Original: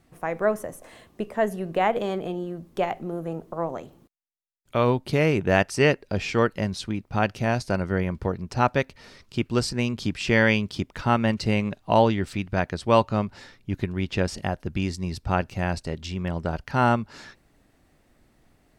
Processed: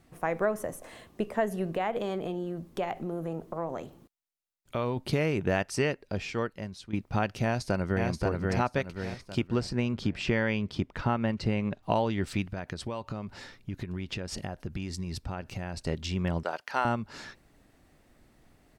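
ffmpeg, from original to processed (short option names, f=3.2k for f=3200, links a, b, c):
-filter_complex "[0:a]asplit=3[a][b][c];[a]afade=t=out:st=1.7:d=0.02[d];[b]acompressor=threshold=-31dB:ratio=2:attack=3.2:release=140:knee=1:detection=peak,afade=t=in:st=1.7:d=0.02,afade=t=out:st=4.96:d=0.02[e];[c]afade=t=in:st=4.96:d=0.02[f];[d][e][f]amix=inputs=3:normalize=0,asplit=2[g][h];[h]afade=t=in:st=7.43:d=0.01,afade=t=out:st=8.08:d=0.01,aecho=0:1:530|1060|1590|2120|2650:0.668344|0.267338|0.106935|0.042774|0.0171096[i];[g][i]amix=inputs=2:normalize=0,asettb=1/sr,asplit=3[j][k][l];[j]atrim=end=9.474[m];[k]atrim=start=9.47:end=11.83,asetpts=PTS-STARTPTS,afade=t=in:d=0.004:c=qsin,afade=t=out:st=2.356:d=0.004:c=qsin,lowpass=f=2.4k:p=1[n];[l]atrim=start=11.826[o];[m][n]acrossfade=d=0.004:c1=hsin:c2=qsin[p];[p][o]acrossfade=d=0.004:c1=qsin:c2=hsin,asettb=1/sr,asplit=3[q][r][s];[q]atrim=end=12.494[t];[r]atrim=start=12.49:end=15.85,asetpts=PTS-STARTPTS,afade=t=in:d=0.004:c=qsin,afade=t=out:st=3.356:d=0.004:c=qsin,acompressor=threshold=-30dB:ratio=16:attack=3.2:release=140:knee=1:detection=peak[u];[s]atrim=start=15.846[v];[t][u]acrossfade=d=0.004:c1=hsin:c2=qsin[w];[w][v]acrossfade=d=0.004:c1=qsin:c2=hsin,asettb=1/sr,asplit=3[x][y][z];[x]atrim=end=16.434[aa];[y]atrim=start=16.43:end=16.85,asetpts=PTS-STARTPTS,afade=t=in:d=0.004:c=qsin,afade=t=out:st=0.416:d=0.004:c=qsin,highpass=570[ab];[z]atrim=start=16.846[ac];[aa][ab]acrossfade=d=0.004:c1=hsin:c2=qsin[ad];[ad][ac]acrossfade=d=0.004:c1=qsin:c2=hsin,asplit=2[ae][af];[ae]atrim=end=6.93,asetpts=PTS-STARTPTS,afade=t=out:st=5.65:d=1.28:c=qua:silence=0.223872[ag];[af]atrim=start=6.93,asetpts=PTS-STARTPTS,afade=t=in:d=0.004:c=hsin:silence=0.223872[ah];[ag][ah]concat=n=2:v=0:a=1,acompressor=threshold=-23dB:ratio=6"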